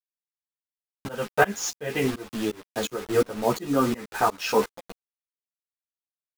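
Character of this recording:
a quantiser's noise floor 6 bits, dither none
tremolo saw up 2.8 Hz, depth 100%
a shimmering, thickened sound

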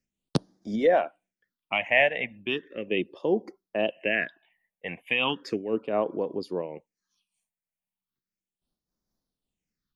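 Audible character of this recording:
phaser sweep stages 6, 0.36 Hz, lowest notch 330–2,700 Hz
amplitude modulation by smooth noise

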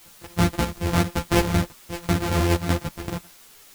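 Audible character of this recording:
a buzz of ramps at a fixed pitch in blocks of 256 samples
chopped level 2.6 Hz, depth 65%, duty 65%
a quantiser's noise floor 8 bits, dither triangular
a shimmering, thickened sound

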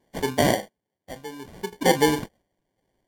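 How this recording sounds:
sample-and-hold tremolo 2.9 Hz, depth 85%
aliases and images of a low sample rate 1,300 Hz, jitter 0%
Ogg Vorbis

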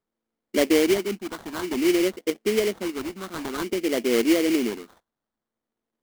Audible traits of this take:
phaser sweep stages 2, 0.54 Hz, lowest notch 420–2,400 Hz
aliases and images of a low sample rate 2,600 Hz, jitter 20%

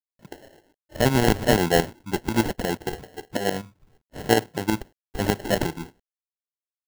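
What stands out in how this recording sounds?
a quantiser's noise floor 12 bits, dither none
tremolo saw up 8.3 Hz, depth 70%
aliases and images of a low sample rate 1,200 Hz, jitter 0%

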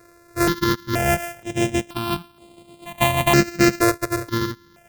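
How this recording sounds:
a buzz of ramps at a fixed pitch in blocks of 128 samples
notches that jump at a steady rate 2.1 Hz 840–5,800 Hz

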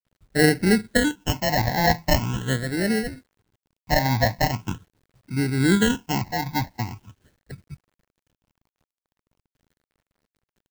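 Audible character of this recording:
aliases and images of a low sample rate 1,200 Hz, jitter 0%
phaser sweep stages 8, 0.42 Hz, lowest notch 390–1,000 Hz
a quantiser's noise floor 12 bits, dither none
amplitude modulation by smooth noise

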